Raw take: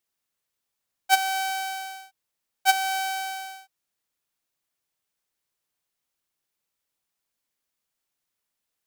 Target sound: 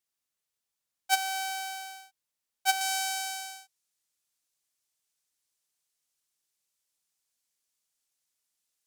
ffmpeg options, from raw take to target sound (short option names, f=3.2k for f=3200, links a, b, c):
-af "asetnsamples=n=441:p=0,asendcmd='2.81 equalizer g 12',equalizer=f=7.4k:t=o:w=2.2:g=5,volume=-7dB"